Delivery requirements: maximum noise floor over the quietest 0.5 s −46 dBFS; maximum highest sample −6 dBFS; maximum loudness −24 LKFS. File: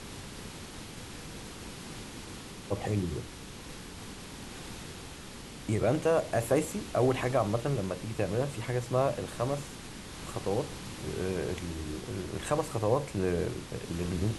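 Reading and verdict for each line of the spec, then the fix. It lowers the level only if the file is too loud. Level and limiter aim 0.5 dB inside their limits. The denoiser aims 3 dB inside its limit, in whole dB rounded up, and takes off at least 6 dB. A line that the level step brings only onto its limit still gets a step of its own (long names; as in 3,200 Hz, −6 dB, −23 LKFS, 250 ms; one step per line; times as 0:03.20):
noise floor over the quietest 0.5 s −45 dBFS: out of spec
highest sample −13.5 dBFS: in spec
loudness −33.0 LKFS: in spec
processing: broadband denoise 6 dB, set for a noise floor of −45 dBFS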